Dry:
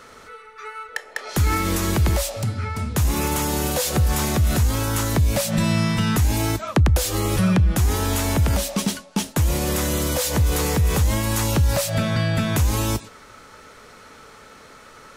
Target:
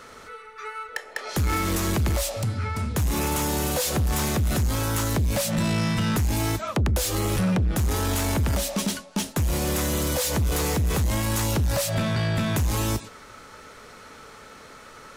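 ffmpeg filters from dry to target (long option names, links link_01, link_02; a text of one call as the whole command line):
ffmpeg -i in.wav -af "asoftclip=type=tanh:threshold=-19dB" out.wav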